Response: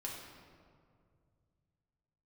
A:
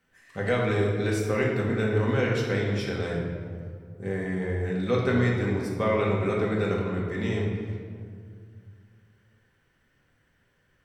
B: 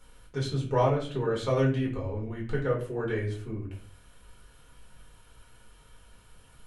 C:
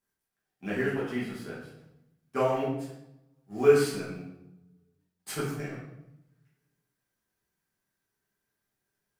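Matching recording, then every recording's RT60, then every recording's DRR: A; 2.2, 0.45, 0.85 s; -3.5, -4.0, -6.5 dB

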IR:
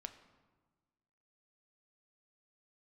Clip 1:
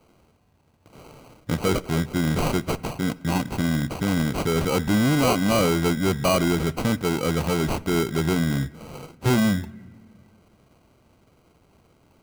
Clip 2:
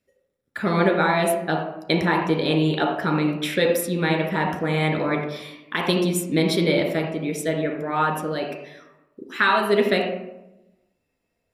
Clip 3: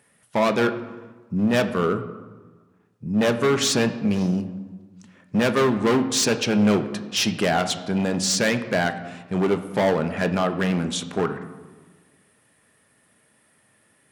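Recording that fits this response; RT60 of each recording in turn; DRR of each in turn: 3; not exponential, 0.90 s, 1.4 s; 19.0, 0.5, 7.5 dB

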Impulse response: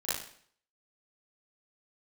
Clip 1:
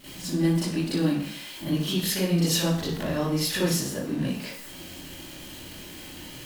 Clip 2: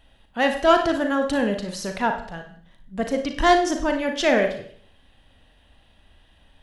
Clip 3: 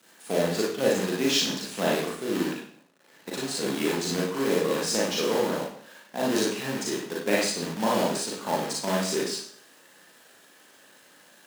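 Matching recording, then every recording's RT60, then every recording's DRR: 1; 0.55, 0.55, 0.55 s; -12.5, 4.5, -5.0 dB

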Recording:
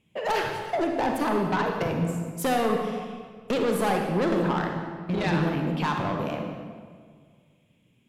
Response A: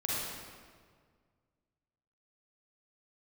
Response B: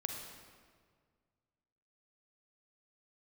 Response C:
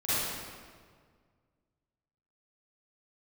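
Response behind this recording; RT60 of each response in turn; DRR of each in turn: B; 1.8, 1.8, 1.8 s; -6.5, 2.5, -15.5 dB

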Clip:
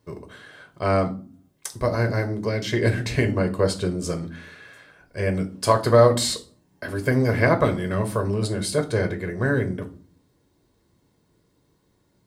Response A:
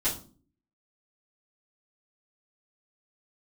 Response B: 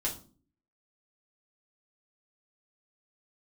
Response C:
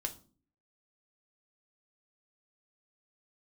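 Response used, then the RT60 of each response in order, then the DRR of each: C; 0.40, 0.40, 0.40 s; -11.5, -3.5, 5.0 dB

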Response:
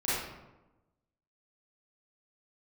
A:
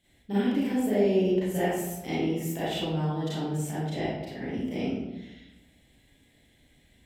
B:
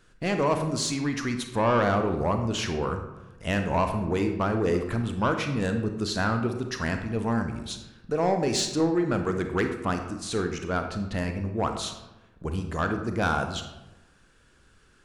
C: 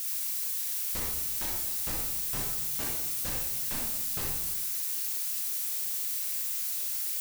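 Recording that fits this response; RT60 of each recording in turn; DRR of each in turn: A; 1.0, 1.0, 1.0 s; -11.5, 5.5, -2.5 dB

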